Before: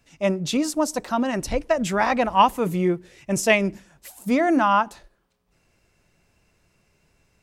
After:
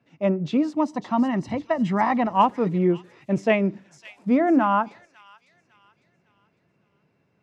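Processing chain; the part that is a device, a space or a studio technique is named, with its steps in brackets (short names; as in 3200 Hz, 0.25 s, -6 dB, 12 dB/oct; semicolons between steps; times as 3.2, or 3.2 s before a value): HPF 110 Hz 24 dB/oct; phone in a pocket (LPF 4000 Hz 12 dB/oct; bell 240 Hz +3 dB 1.8 oct; high shelf 2200 Hz -10 dB); high shelf 10000 Hz -6 dB; 0.73–2.27 comb 1 ms, depth 57%; thin delay 0.553 s, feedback 38%, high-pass 4500 Hz, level -4 dB; gain -1 dB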